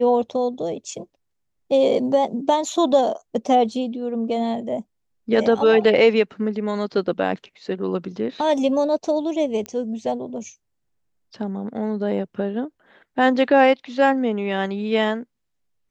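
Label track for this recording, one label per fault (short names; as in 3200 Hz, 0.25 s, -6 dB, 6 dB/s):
9.660000	9.660000	pop -16 dBFS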